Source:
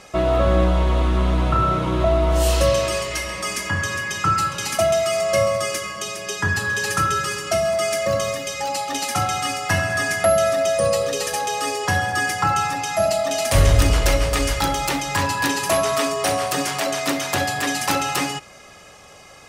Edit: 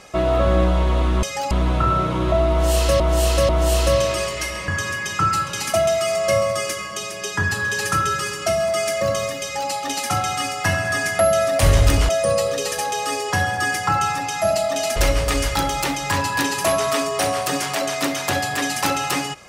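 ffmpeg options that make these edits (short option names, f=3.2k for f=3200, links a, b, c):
-filter_complex "[0:a]asplit=9[a][b][c][d][e][f][g][h][i];[a]atrim=end=1.232[j];[b]atrim=start=8.468:end=8.752[k];[c]atrim=start=1.228:end=2.722[l];[d]atrim=start=2.228:end=2.722[m];[e]atrim=start=2.228:end=3.422[n];[f]atrim=start=3.728:end=10.642[o];[g]atrim=start=13.508:end=14.012[p];[h]atrim=start=10.638:end=13.512[q];[i]atrim=start=14.008[r];[j][k]acrossfade=d=0.004:c1=hsin:c2=hsin[s];[s][l]acrossfade=d=0.004:c1=hsin:c2=hsin[t];[t][m]acrossfade=d=0.004:c1=hsin:c2=hsin[u];[u][n]acrossfade=d=0.004:c1=hsin:c2=hsin[v];[v][o]acrossfade=d=0.004:c1=hsin:c2=hsin[w];[w][p]acrossfade=d=0.004:c1=hsin:c2=hsin[x];[x][q]acrossfade=d=0.004:c1=hsin:c2=hsin[y];[y][r]acrossfade=d=0.004:c1=hsin:c2=hsin"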